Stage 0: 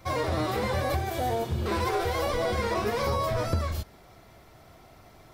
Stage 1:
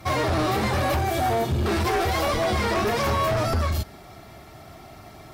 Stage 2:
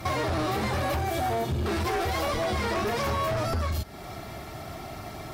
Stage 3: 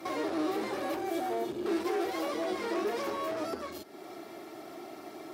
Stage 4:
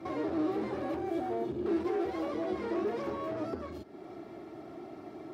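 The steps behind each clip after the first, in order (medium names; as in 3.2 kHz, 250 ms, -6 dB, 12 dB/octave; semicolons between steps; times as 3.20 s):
comb of notches 500 Hz; sine folder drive 10 dB, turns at -14.5 dBFS; trim -4.5 dB
compression 3:1, threshold -35 dBFS, peak gain reduction 10.5 dB; trim +5.5 dB
resonant high-pass 330 Hz, resonance Q 3.4; trim -8.5 dB
RIAA curve playback; trim -4 dB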